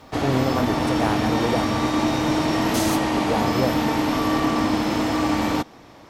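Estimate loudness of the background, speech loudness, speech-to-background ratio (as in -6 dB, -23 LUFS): -22.0 LUFS, -27.0 LUFS, -5.0 dB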